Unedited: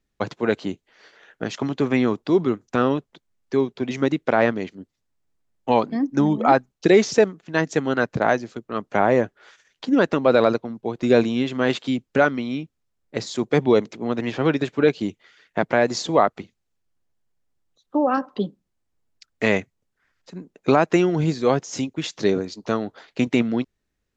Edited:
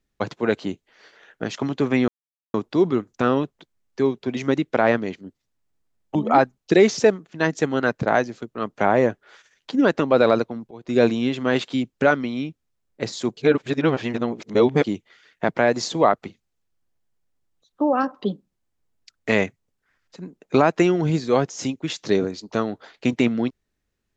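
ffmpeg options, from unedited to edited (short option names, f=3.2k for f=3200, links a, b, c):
-filter_complex "[0:a]asplit=6[a][b][c][d][e][f];[a]atrim=end=2.08,asetpts=PTS-STARTPTS,afade=t=out:st=2.076:d=0.004:c=hsin,apad=pad_dur=0.46[g];[b]atrim=start=2.08:end=5.692,asetpts=PTS-STARTPTS,afade=t=in:d=0.004:c=hsin[h];[c]atrim=start=6.288:end=10.85,asetpts=PTS-STARTPTS,afade=t=out:st=4.558:d=0.004:c=hsin:silence=0.1[i];[d]atrim=start=10.85:end=13.512,asetpts=PTS-STARTPTS,afade=t=in:d=0.33:silence=0.1[j];[e]atrim=start=13.508:end=14.982,asetpts=PTS-STARTPTS,areverse[k];[f]atrim=start=14.978[l];[g][h]concat=n=2:v=0:a=1[m];[i][j]concat=n=2:v=0:a=1[n];[m][n]acrossfade=d=0.004:c1=hsin:c2=hsin[o];[o][k]acrossfade=d=0.004:c1=hsin:c2=hsin[p];[p][l]acrossfade=d=0.004:c1=hsin:c2=hsin"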